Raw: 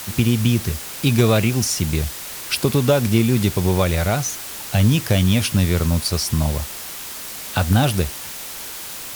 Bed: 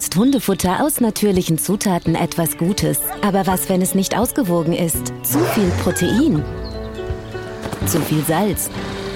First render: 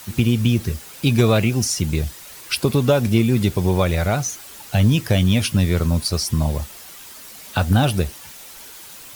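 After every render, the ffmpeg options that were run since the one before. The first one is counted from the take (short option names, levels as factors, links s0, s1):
-af "afftdn=nr=9:nf=-33"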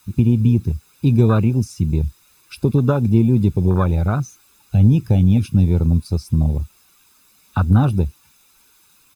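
-af "afwtdn=0.0891,aecho=1:1:0.8:0.54"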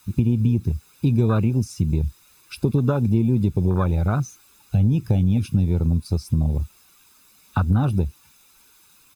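-af "acompressor=threshold=0.141:ratio=2.5"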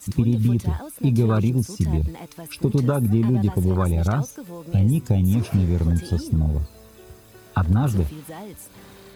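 -filter_complex "[1:a]volume=0.1[s0];[0:a][s0]amix=inputs=2:normalize=0"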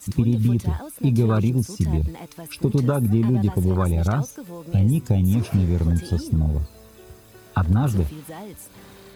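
-af anull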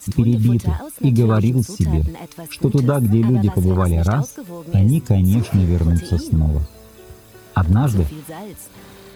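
-af "volume=1.58"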